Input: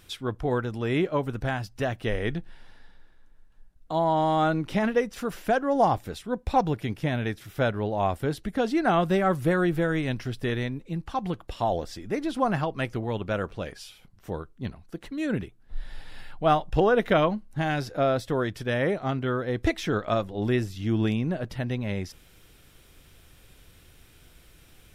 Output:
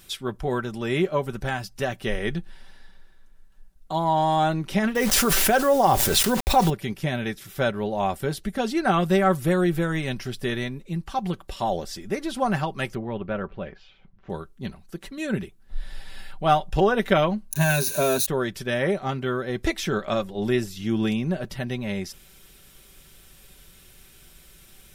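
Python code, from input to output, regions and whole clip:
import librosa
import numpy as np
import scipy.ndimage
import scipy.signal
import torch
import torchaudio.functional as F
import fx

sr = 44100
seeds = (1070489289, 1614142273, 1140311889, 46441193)

y = fx.chain(x, sr, fx.peak_eq(hz=190.0, db=-9.5, octaves=0.26),
    fx.quant_dither(seeds[0], bits=8, dither='none'),
    fx.env_flatten(amount_pct=70), at=(4.95, 6.7))
y = fx.chain(y, sr, fx.air_absorb(metres=490.0),
    fx.resample_bad(factor=3, down='none', up='filtered'), at=(12.95, 14.3))
y = fx.chain(y, sr, fx.crossing_spikes(level_db=-26.5),
    fx.ripple_eq(per_octave=1.5, db=13), at=(17.51, 18.26))
y = fx.high_shelf(y, sr, hz=4400.0, db=8.5)
y = y + 0.51 * np.pad(y, (int(5.2 * sr / 1000.0), 0))[:len(y)]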